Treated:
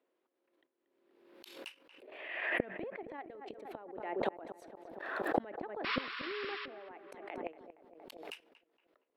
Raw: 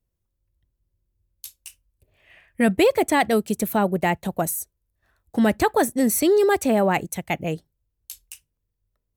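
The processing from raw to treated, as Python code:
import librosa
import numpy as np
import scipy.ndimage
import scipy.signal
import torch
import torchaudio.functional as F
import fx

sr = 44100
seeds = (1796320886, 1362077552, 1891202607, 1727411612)

p1 = scipy.signal.sosfilt(scipy.signal.butter(6, 300.0, 'highpass', fs=sr, output='sos'), x)
p2 = fx.env_lowpass_down(p1, sr, base_hz=2500.0, full_db=-15.5)
p3 = fx.level_steps(p2, sr, step_db=9)
p4 = fx.gate_flip(p3, sr, shuts_db=-27.0, range_db=-36)
p5 = fx.spec_paint(p4, sr, seeds[0], shape='noise', start_s=5.84, length_s=0.82, low_hz=980.0, high_hz=5600.0, level_db=-50.0)
p6 = fx.air_absorb(p5, sr, metres=420.0)
p7 = p6 + fx.echo_filtered(p6, sr, ms=233, feedback_pct=54, hz=1400.0, wet_db=-12, dry=0)
p8 = fx.pre_swell(p7, sr, db_per_s=45.0)
y = F.gain(torch.from_numpy(p8), 13.5).numpy()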